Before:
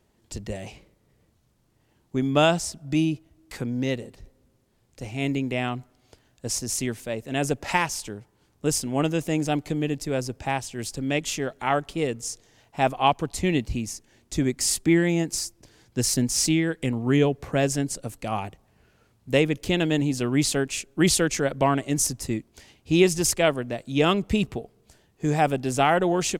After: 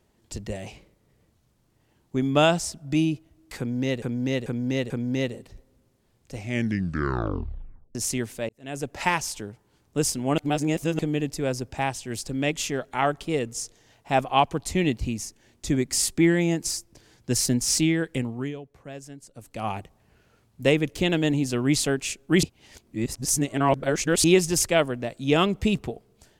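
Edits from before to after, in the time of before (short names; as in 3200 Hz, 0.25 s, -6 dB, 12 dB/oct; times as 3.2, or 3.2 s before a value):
3.58–4.02 loop, 4 plays
5.03 tape stop 1.60 s
7.17–7.82 fade in
9.06–9.67 reverse
16.8–18.41 dip -17 dB, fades 0.42 s
21.11–22.92 reverse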